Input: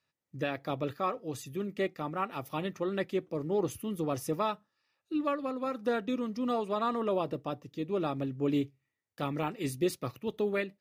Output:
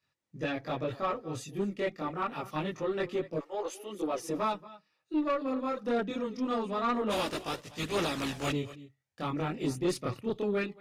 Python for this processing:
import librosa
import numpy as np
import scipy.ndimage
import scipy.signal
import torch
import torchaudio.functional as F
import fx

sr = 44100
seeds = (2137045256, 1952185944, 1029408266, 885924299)

y = fx.spec_flatten(x, sr, power=0.45, at=(7.09, 8.49), fade=0.02)
y = scipy.signal.sosfilt(scipy.signal.butter(2, 8900.0, 'lowpass', fs=sr, output='sos'), y)
y = y + 10.0 ** (-19.5 / 20.0) * np.pad(y, (int(231 * sr / 1000.0), 0))[:len(y)]
y = fx.chorus_voices(y, sr, voices=2, hz=0.25, base_ms=22, depth_ms=4.5, mix_pct=60)
y = fx.highpass(y, sr, hz=fx.line((3.39, 720.0), (4.28, 190.0)), slope=24, at=(3.39, 4.28), fade=0.02)
y = fx.tube_stage(y, sr, drive_db=27.0, bias=0.2)
y = y * librosa.db_to_amplitude(5.0)